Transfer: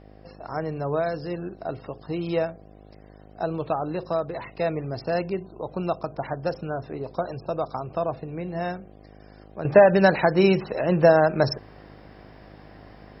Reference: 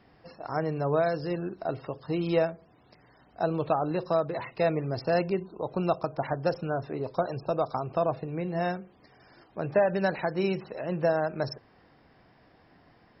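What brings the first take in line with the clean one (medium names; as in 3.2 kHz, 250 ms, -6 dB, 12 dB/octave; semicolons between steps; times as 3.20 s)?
de-hum 51.6 Hz, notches 15; gain correction -9.5 dB, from 9.65 s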